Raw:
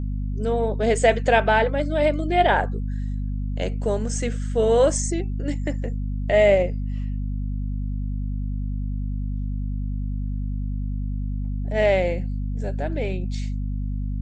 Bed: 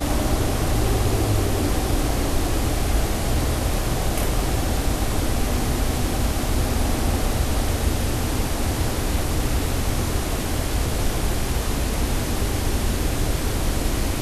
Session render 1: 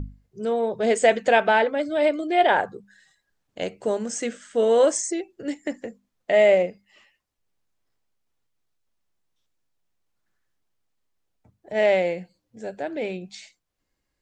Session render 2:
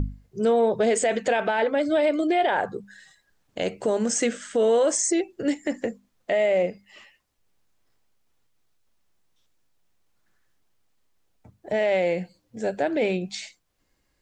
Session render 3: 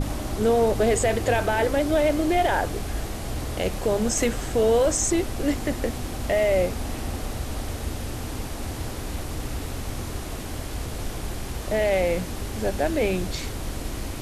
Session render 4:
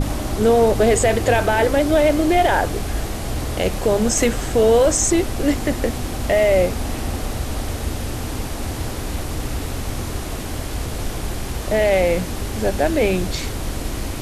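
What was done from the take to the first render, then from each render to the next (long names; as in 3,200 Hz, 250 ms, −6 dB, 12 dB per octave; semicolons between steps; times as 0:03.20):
mains-hum notches 50/100/150/200/250 Hz
in parallel at +2 dB: downward compressor, threshold −27 dBFS, peak gain reduction 14.5 dB; on the sum: brickwall limiter −14 dBFS, peak gain reduction 10 dB
mix in bed −8.5 dB
level +5.5 dB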